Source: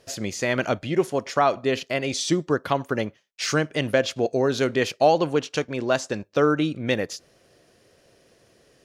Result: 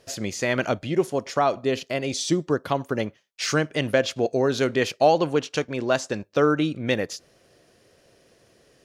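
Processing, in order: 0.71–3.00 s: dynamic bell 1.8 kHz, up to -4 dB, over -36 dBFS, Q 0.75

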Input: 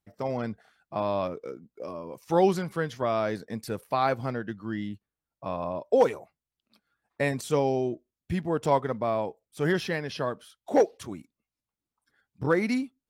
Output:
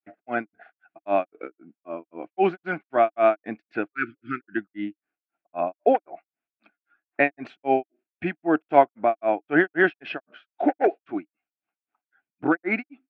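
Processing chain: granulator 206 ms, grains 3.8 per s, pitch spread up and down by 0 st; spectral replace 3.95–4.55 s, 400–1200 Hz before; cabinet simulation 310–2600 Hz, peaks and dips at 310 Hz +10 dB, 490 Hz -8 dB, 720 Hz +10 dB, 1 kHz -7 dB, 1.5 kHz +9 dB, 2.5 kHz +9 dB; trim +7 dB

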